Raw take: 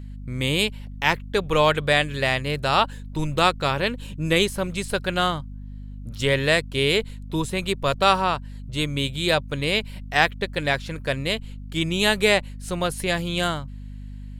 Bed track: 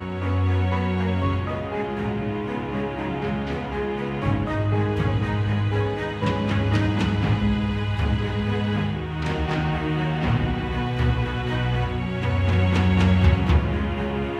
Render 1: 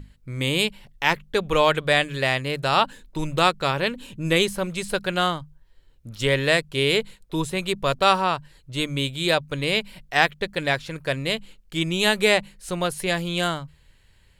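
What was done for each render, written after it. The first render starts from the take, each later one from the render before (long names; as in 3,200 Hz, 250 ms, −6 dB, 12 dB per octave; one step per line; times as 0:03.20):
mains-hum notches 50/100/150/200/250 Hz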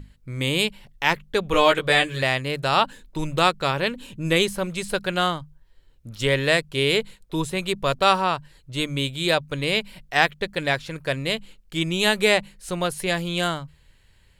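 0:01.52–0:02.23: double-tracking delay 16 ms −2.5 dB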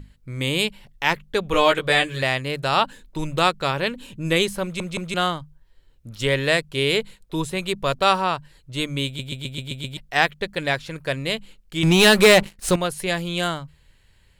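0:04.63: stutter in place 0.17 s, 3 plays
0:09.06: stutter in place 0.13 s, 7 plays
0:11.83–0:12.76: leveller curve on the samples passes 3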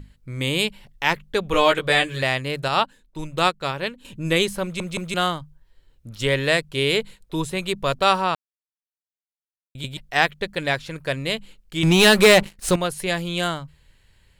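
0:02.68–0:04.05: expander for the loud parts, over −37 dBFS
0:04.87–0:05.40: high-shelf EQ 11,000 Hz +6.5 dB
0:08.35–0:09.75: silence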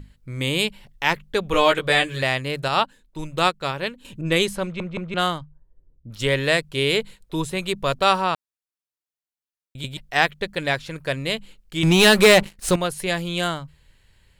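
0:04.21–0:06.10: low-pass that shuts in the quiet parts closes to 320 Hz, open at −19 dBFS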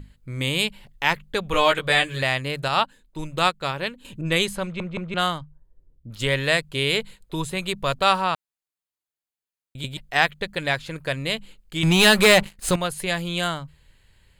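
dynamic equaliser 360 Hz, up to −5 dB, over −31 dBFS, Q 1.1
notch filter 5,600 Hz, Q 8.8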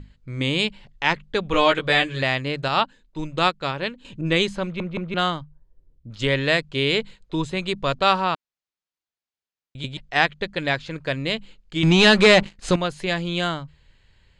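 low-pass filter 6,500 Hz 24 dB per octave
dynamic equaliser 290 Hz, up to +6 dB, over −37 dBFS, Q 1.4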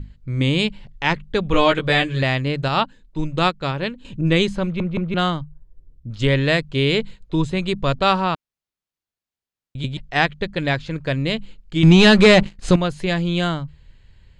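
low-shelf EQ 280 Hz +9.5 dB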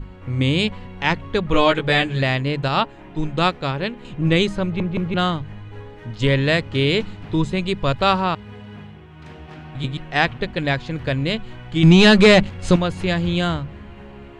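mix in bed track −14.5 dB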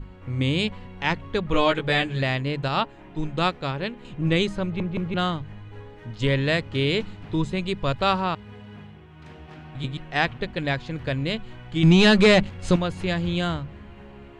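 level −4.5 dB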